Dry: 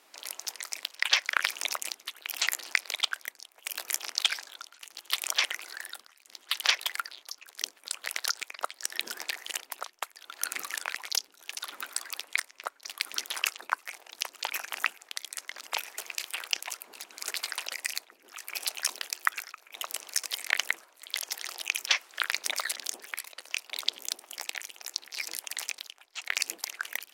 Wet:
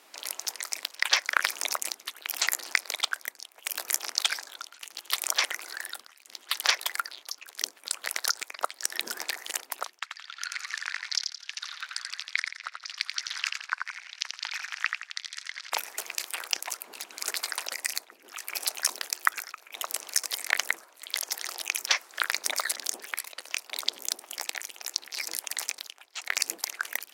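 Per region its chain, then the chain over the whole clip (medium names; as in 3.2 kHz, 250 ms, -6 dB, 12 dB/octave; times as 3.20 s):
9.99–15.72 s: Chebyshev band-pass 1.6–5.1 kHz + feedback delay 85 ms, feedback 37%, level -5 dB
whole clip: high-pass 52 Hz; dynamic bell 2.9 kHz, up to -7 dB, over -45 dBFS, Q 1.6; trim +4 dB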